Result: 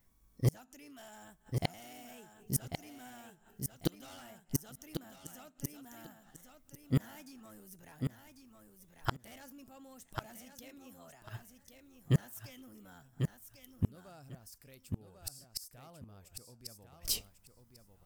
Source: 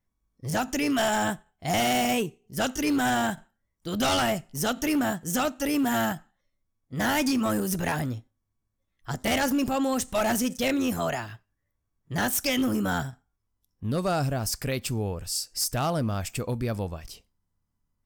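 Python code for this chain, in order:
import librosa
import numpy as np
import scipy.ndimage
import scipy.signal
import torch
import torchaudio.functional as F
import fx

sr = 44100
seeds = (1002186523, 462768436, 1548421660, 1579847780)

y = fx.high_shelf(x, sr, hz=8900.0, db=11.0)
y = fx.gate_flip(y, sr, shuts_db=-24.0, range_db=-37)
y = fx.echo_feedback(y, sr, ms=1095, feedback_pct=18, wet_db=-6.0)
y = y * librosa.db_to_amplitude(8.0)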